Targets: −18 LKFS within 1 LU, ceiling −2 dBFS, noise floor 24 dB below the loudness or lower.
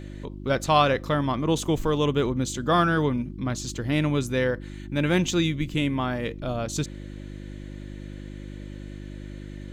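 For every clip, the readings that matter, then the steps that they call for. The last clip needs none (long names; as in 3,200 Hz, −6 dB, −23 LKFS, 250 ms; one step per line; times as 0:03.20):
mains hum 50 Hz; hum harmonics up to 350 Hz; level of the hum −37 dBFS; integrated loudness −25.0 LKFS; sample peak −6.5 dBFS; target loudness −18.0 LKFS
→ hum removal 50 Hz, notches 7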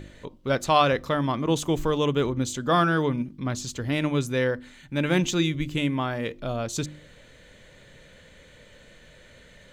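mains hum none found; integrated loudness −25.5 LKFS; sample peak −6.0 dBFS; target loudness −18.0 LKFS
→ level +7.5 dB
brickwall limiter −2 dBFS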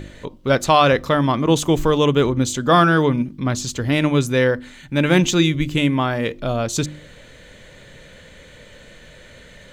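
integrated loudness −18.5 LKFS; sample peak −2.0 dBFS; background noise floor −45 dBFS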